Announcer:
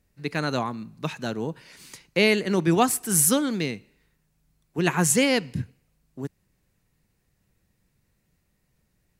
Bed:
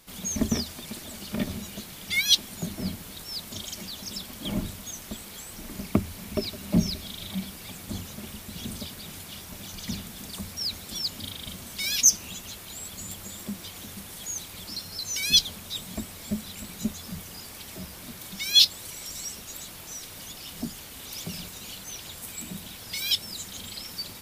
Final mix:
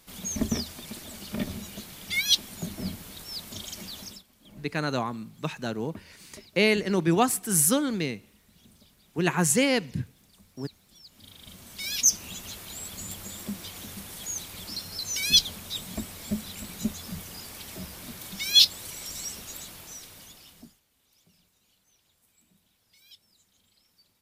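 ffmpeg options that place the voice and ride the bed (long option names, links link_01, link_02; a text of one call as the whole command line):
ffmpeg -i stem1.wav -i stem2.wav -filter_complex "[0:a]adelay=4400,volume=-2dB[link_01];[1:a]volume=19dB,afade=type=out:start_time=4.01:duration=0.22:silence=0.112202,afade=type=in:start_time=11.08:duration=1.4:silence=0.0891251,afade=type=out:start_time=19.44:duration=1.36:silence=0.0398107[link_02];[link_01][link_02]amix=inputs=2:normalize=0" out.wav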